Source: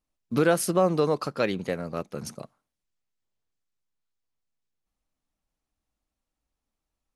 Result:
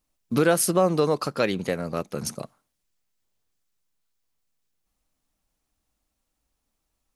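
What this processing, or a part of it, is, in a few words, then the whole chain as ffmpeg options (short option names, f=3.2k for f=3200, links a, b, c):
parallel compression: -filter_complex "[0:a]highshelf=f=5.5k:g=6,asplit=2[a][b];[b]acompressor=threshold=-33dB:ratio=6,volume=-1dB[c];[a][c]amix=inputs=2:normalize=0"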